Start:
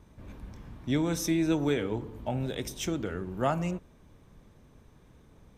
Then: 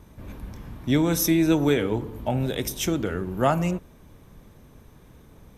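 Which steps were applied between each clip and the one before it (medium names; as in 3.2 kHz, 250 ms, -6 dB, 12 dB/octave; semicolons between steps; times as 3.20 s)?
peaking EQ 12 kHz +12.5 dB 0.33 oct; trim +6.5 dB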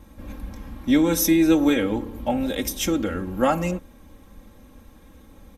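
comb 3.7 ms, depth 82%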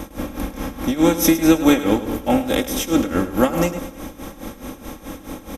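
spectral levelling over time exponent 0.6; tremolo 4.7 Hz, depth 91%; feedback delay 105 ms, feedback 44%, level -13.5 dB; trim +4.5 dB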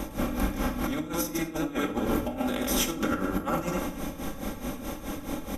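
dynamic bell 1.3 kHz, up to +6 dB, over -40 dBFS, Q 2; compressor with a negative ratio -22 dBFS, ratio -0.5; simulated room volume 650 m³, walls furnished, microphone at 1.2 m; trim -7 dB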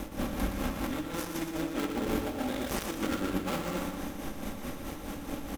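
dead-time distortion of 0.26 ms; feedback delay 119 ms, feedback 57%, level -7.5 dB; trim -4 dB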